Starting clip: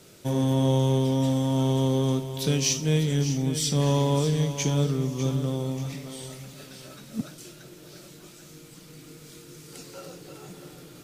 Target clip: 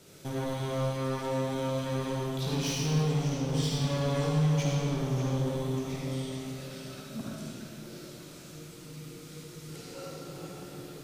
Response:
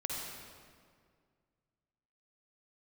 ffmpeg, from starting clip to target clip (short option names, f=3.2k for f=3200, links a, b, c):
-filter_complex "[0:a]acrossover=split=5300[a][b];[a]volume=28.5dB,asoftclip=hard,volume=-28.5dB[c];[b]acompressor=threshold=-52dB:ratio=6[d];[c][d]amix=inputs=2:normalize=0[e];[1:a]atrim=start_sample=2205[f];[e][f]afir=irnorm=-1:irlink=0,volume=-2dB"